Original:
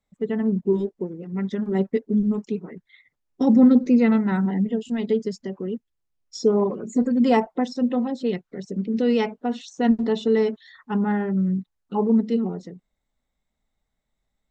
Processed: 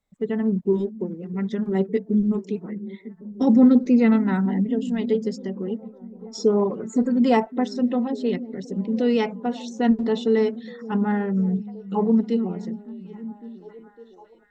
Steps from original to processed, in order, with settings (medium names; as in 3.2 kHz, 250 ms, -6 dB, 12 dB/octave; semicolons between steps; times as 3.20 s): repeats whose band climbs or falls 557 ms, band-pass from 170 Hz, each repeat 0.7 oct, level -12 dB